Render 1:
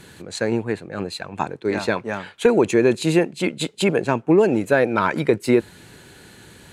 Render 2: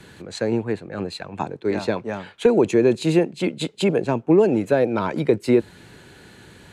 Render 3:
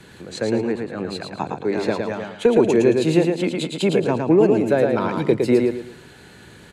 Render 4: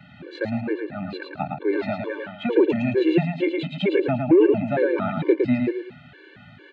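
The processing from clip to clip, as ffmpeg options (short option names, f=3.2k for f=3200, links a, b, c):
-filter_complex "[0:a]highshelf=f=6.9k:g=-9.5,acrossover=split=200|980|2700[a][b][c][d];[c]acompressor=threshold=-39dB:ratio=6[e];[a][b][e][d]amix=inputs=4:normalize=0"
-filter_complex "[0:a]bandreject=f=50:t=h:w=6,bandreject=f=100:t=h:w=6,asplit=2[a][b];[b]aecho=0:1:111|222|333|444:0.631|0.189|0.0568|0.017[c];[a][c]amix=inputs=2:normalize=0"
-af "highpass=120,equalizer=f=220:t=q:w=4:g=-5,equalizer=f=470:t=q:w=4:g=-8,equalizer=f=1k:t=q:w=4:g=-10,lowpass=f=3.1k:w=0.5412,lowpass=f=3.1k:w=1.3066,afftfilt=real='re*gt(sin(2*PI*2.2*pts/sr)*(1-2*mod(floor(b*sr/1024/300),2)),0)':imag='im*gt(sin(2*PI*2.2*pts/sr)*(1-2*mod(floor(b*sr/1024/300),2)),0)':win_size=1024:overlap=0.75,volume=3.5dB"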